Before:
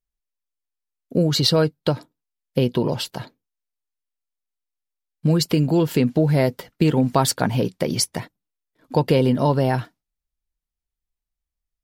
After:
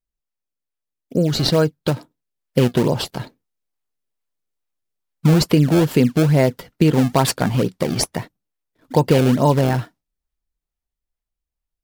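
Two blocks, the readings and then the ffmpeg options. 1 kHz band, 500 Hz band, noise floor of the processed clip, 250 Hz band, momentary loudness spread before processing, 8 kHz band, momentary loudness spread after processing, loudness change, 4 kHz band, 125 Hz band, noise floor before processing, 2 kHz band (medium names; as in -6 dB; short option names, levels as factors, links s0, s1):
+2.0 dB, +2.5 dB, -85 dBFS, +3.0 dB, 9 LU, +0.5 dB, 10 LU, +2.5 dB, 0.0 dB, +3.5 dB, under -85 dBFS, +3.5 dB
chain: -filter_complex "[0:a]dynaudnorm=f=340:g=11:m=3.76,asplit=2[s0][s1];[s1]acrusher=samples=26:mix=1:aa=0.000001:lfo=1:lforange=41.6:lforate=2.3,volume=0.531[s2];[s0][s2]amix=inputs=2:normalize=0,volume=0.668"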